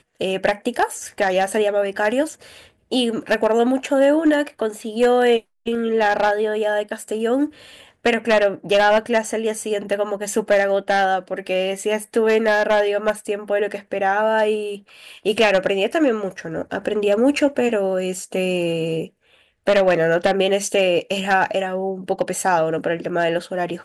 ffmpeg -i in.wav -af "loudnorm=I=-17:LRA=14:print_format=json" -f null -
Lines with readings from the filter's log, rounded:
"input_i" : "-20.1",
"input_tp" : "-2.5",
"input_lra" : "2.6",
"input_thresh" : "-30.3",